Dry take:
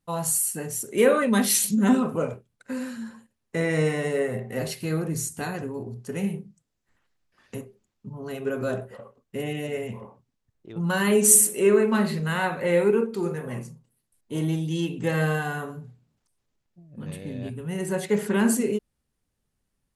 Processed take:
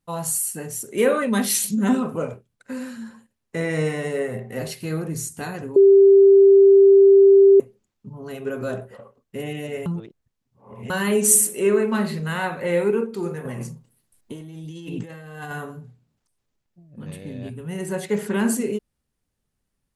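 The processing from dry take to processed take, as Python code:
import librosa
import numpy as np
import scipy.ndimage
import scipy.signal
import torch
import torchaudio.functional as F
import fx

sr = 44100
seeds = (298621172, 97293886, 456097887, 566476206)

y = fx.over_compress(x, sr, threshold_db=-35.0, ratio=-1.0, at=(13.45, 15.51))
y = fx.edit(y, sr, fx.bleep(start_s=5.76, length_s=1.84, hz=393.0, db=-8.0),
    fx.reverse_span(start_s=9.86, length_s=1.04), tone=tone)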